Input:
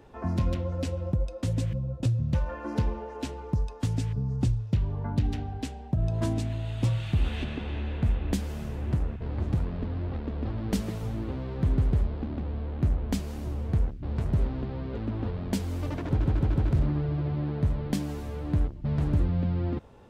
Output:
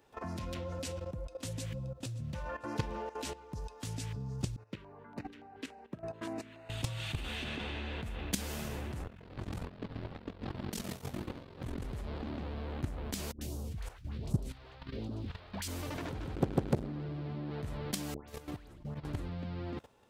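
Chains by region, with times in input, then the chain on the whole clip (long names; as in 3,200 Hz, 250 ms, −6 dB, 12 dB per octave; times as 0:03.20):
0:00.79–0:02.96: single-tap delay 575 ms −19.5 dB + multiband upward and downward expander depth 40%
0:04.56–0:06.70: high-pass filter 48 Hz + three-way crossover with the lows and the highs turned down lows −18 dB, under 230 Hz, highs −16 dB, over 2,800 Hz + auto-filter notch square 3.5 Hz 750–3,300 Hz
0:09.02–0:11.85: high-pass filter 43 Hz + ring modulation 22 Hz + parametric band 190 Hz +2.5 dB 0.2 octaves
0:13.32–0:15.68: all-pass phaser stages 2, 1.3 Hz, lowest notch 200–2,000 Hz + all-pass dispersion highs, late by 92 ms, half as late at 730 Hz
0:16.35–0:17.51: parametric band 230 Hz +10.5 dB 0.85 octaves + saturating transformer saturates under 300 Hz
0:18.14–0:19.05: high-shelf EQ 7,200 Hz −3 dB + downward compressor 12 to 1, threshold −32 dBFS + all-pass dispersion highs, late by 141 ms, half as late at 1,600 Hz
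whole clip: spectral tilt +2.5 dB per octave; output level in coarse steps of 14 dB; level +3 dB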